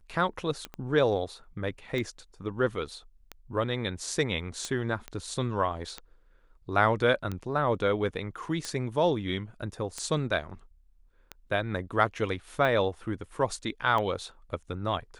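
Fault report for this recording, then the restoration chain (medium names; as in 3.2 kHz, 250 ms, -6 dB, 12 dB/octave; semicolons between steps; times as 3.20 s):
tick 45 rpm -20 dBFS
0.74 s: pop -25 dBFS
5.08 s: pop -22 dBFS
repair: de-click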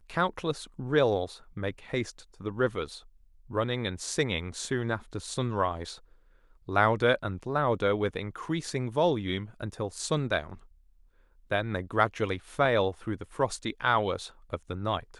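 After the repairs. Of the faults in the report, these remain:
0.74 s: pop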